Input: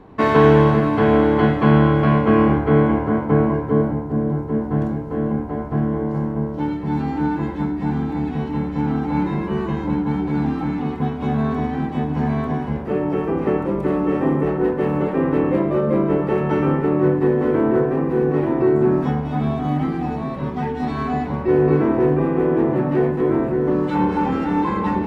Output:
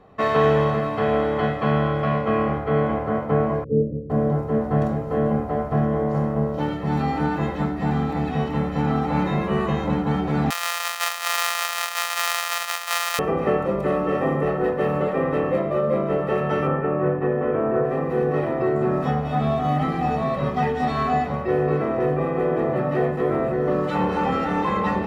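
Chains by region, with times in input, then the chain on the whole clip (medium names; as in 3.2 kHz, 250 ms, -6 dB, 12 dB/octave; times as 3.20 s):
3.64–4.10 s: steep low-pass 520 Hz 72 dB/octave + upward expansion, over -25 dBFS
10.50–13.19 s: sorted samples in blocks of 256 samples + high-pass 950 Hz 24 dB/octave
16.67–17.85 s: low-pass 2.6 kHz 24 dB/octave + band-stop 2 kHz
whole clip: bass shelf 150 Hz -10 dB; comb 1.6 ms, depth 59%; gain riding within 4 dB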